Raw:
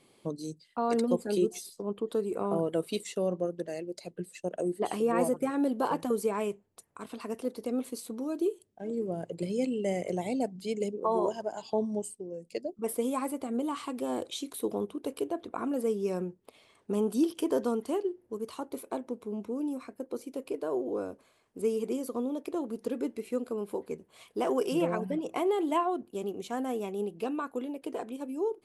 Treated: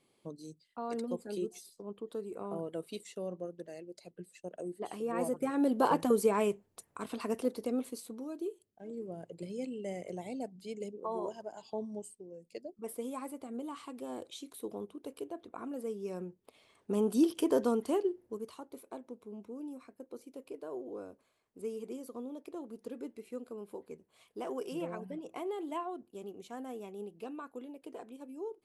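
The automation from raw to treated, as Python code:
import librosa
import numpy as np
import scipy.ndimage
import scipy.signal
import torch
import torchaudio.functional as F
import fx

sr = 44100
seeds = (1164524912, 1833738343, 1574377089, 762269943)

y = fx.gain(x, sr, db=fx.line((4.98, -9.5), (5.84, 2.0), (7.39, 2.0), (8.4, -9.0), (15.99, -9.0), (17.19, 0.0), (18.2, 0.0), (18.63, -10.0)))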